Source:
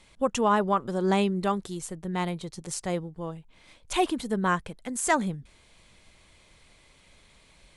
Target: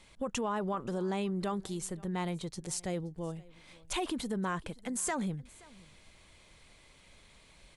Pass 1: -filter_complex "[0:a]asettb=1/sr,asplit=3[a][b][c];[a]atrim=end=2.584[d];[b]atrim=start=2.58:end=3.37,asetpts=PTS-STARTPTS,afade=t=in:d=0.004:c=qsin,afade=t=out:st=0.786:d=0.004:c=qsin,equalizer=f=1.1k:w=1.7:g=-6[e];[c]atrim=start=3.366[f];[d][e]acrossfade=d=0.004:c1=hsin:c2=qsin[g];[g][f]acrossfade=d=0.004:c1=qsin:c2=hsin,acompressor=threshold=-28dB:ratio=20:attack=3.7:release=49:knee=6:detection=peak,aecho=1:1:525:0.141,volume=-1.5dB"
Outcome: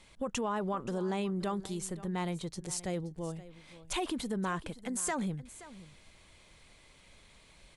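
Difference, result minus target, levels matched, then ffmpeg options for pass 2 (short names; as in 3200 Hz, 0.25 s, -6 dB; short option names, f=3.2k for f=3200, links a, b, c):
echo-to-direct +6.5 dB
-filter_complex "[0:a]asettb=1/sr,asplit=3[a][b][c];[a]atrim=end=2.584[d];[b]atrim=start=2.58:end=3.37,asetpts=PTS-STARTPTS,afade=t=in:d=0.004:c=qsin,afade=t=out:st=0.786:d=0.004:c=qsin,equalizer=f=1.1k:w=1.7:g=-6[e];[c]atrim=start=3.366[f];[d][e]acrossfade=d=0.004:c1=hsin:c2=qsin[g];[g][f]acrossfade=d=0.004:c1=qsin:c2=hsin,acompressor=threshold=-28dB:ratio=20:attack=3.7:release=49:knee=6:detection=peak,aecho=1:1:525:0.0668,volume=-1.5dB"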